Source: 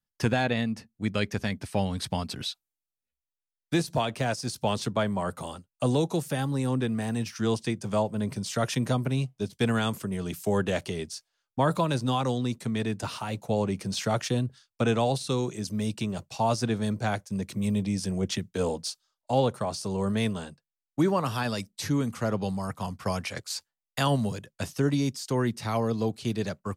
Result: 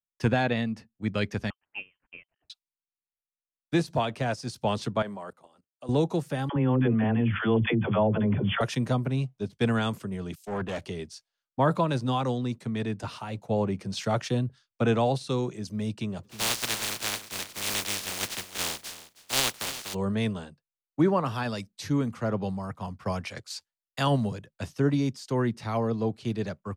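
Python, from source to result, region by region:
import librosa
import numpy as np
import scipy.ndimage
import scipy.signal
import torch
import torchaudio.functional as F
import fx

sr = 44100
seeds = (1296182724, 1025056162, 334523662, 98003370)

y = fx.chain(x, sr, fx.highpass(hz=710.0, slope=12),
    fx.freq_invert(carrier_hz=3300),
    fx.upward_expand(threshold_db=-50.0, expansion=2.5), at=(1.5, 2.5))
y = fx.chain(y, sr, fx.highpass(hz=140.0, slope=12),
    fx.bass_treble(bass_db=-7, treble_db=2),
    fx.level_steps(step_db=18), at=(5.02, 5.89))
y = fx.chain(y, sr, fx.brickwall_lowpass(high_hz=3500.0),
    fx.dispersion(late='lows', ms=68.0, hz=420.0),
    fx.env_flatten(amount_pct=70), at=(6.49, 8.61))
y = fx.chain(y, sr, fx.clip_hard(threshold_db=-26.0),
    fx.band_widen(depth_pct=100), at=(10.35, 10.83))
y = fx.spec_flatten(y, sr, power=0.12, at=(16.23, 19.93), fade=0.02)
y = fx.echo_feedback(y, sr, ms=317, feedback_pct=20, wet_db=-12.0, at=(16.23, 19.93), fade=0.02)
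y = fx.high_shelf(y, sr, hz=6600.0, db=-11.5)
y = fx.band_widen(y, sr, depth_pct=40)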